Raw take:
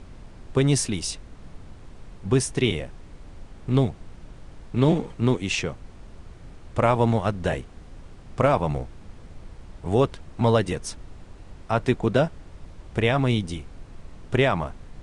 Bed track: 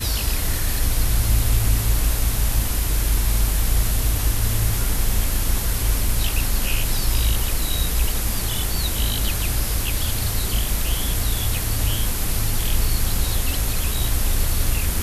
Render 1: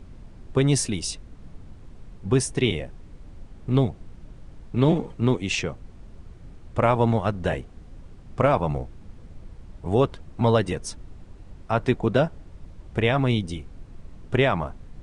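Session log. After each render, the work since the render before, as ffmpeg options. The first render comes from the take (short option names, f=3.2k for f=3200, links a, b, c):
-af "afftdn=nr=6:nf=-45"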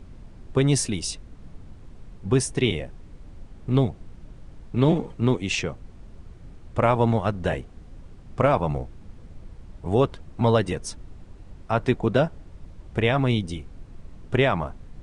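-af anull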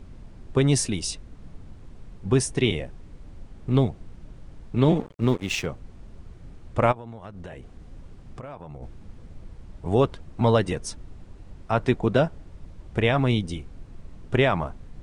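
-filter_complex "[0:a]asettb=1/sr,asplit=3[a][b][c];[a]atrim=end=5.004[d];[b]atrim=start=5:end=5.66,asetpts=PTS-STARTPTS,afade=t=in:d=0.004:c=qsin,afade=t=out:st=0.656:d=0.004:c=qsin,aeval=exprs='sgn(val(0))*max(abs(val(0))-0.0119,0)':c=same[e];[c]atrim=start=5.656[f];[d][e]acrossfade=d=0.004:c1=hsin:c2=qsin[g];[g][f]acrossfade=d=0.004:c1=qsin:c2=hsin,asplit=3[h][i][j];[h]afade=t=out:st=6.91:d=0.02[k];[i]acompressor=threshold=-35dB:ratio=10:attack=3.2:release=140:knee=1:detection=peak,afade=t=in:st=6.91:d=0.02,afade=t=out:st=8.82:d=0.02[l];[j]afade=t=in:st=8.82:d=0.02[m];[k][l][m]amix=inputs=3:normalize=0"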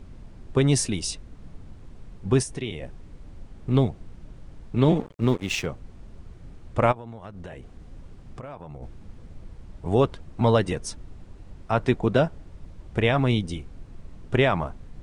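-filter_complex "[0:a]asplit=3[a][b][c];[a]afade=t=out:st=2.42:d=0.02[d];[b]acompressor=threshold=-34dB:ratio=2:attack=3.2:release=140:knee=1:detection=peak,afade=t=in:st=2.42:d=0.02,afade=t=out:st=2.82:d=0.02[e];[c]afade=t=in:st=2.82:d=0.02[f];[d][e][f]amix=inputs=3:normalize=0"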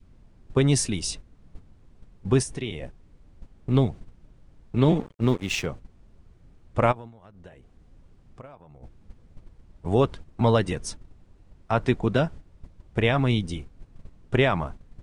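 -af "adynamicequalizer=threshold=0.02:dfrequency=580:dqfactor=0.95:tfrequency=580:tqfactor=0.95:attack=5:release=100:ratio=0.375:range=3:mode=cutabove:tftype=bell,agate=range=-10dB:threshold=-36dB:ratio=16:detection=peak"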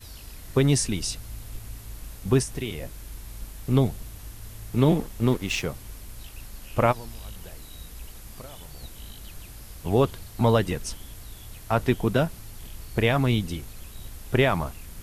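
-filter_complex "[1:a]volume=-20.5dB[a];[0:a][a]amix=inputs=2:normalize=0"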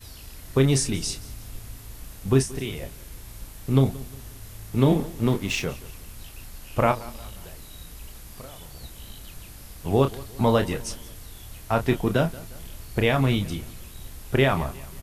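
-filter_complex "[0:a]asplit=2[a][b];[b]adelay=30,volume=-8dB[c];[a][c]amix=inputs=2:normalize=0,aecho=1:1:178|356|534:0.1|0.044|0.0194"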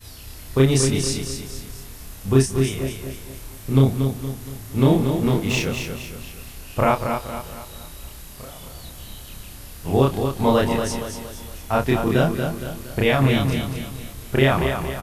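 -filter_complex "[0:a]asplit=2[a][b];[b]adelay=30,volume=-3dB[c];[a][c]amix=inputs=2:normalize=0,aecho=1:1:233|466|699|932|1165:0.473|0.208|0.0916|0.0403|0.0177"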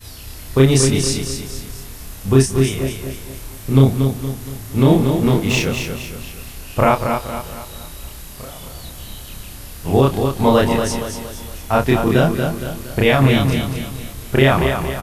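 -af "volume=4.5dB,alimiter=limit=-1dB:level=0:latency=1"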